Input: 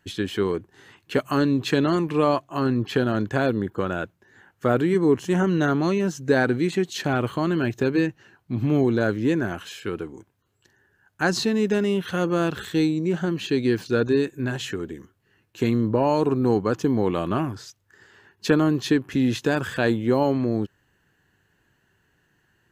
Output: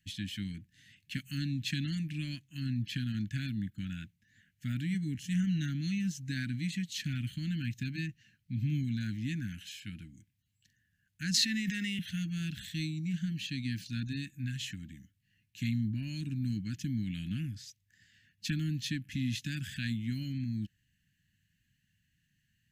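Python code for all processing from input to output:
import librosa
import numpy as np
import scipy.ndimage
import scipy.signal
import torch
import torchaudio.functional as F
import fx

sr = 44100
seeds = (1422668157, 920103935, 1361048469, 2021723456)

y = fx.chain(x, sr, fx.highpass(hz=250.0, slope=24),
    fx.peak_eq(hz=1900.0, db=8.5, octaves=0.41),
    fx.env_flatten(amount_pct=100), at=(11.34, 11.99))
y = scipy.signal.sosfilt(scipy.signal.cheby2(4, 40, [340.0, 1200.0], 'bandstop', fs=sr, output='sos'), y)
y = fx.peak_eq(y, sr, hz=320.0, db=13.0, octaves=0.39)
y = y * librosa.db_to_amplitude(-6.5)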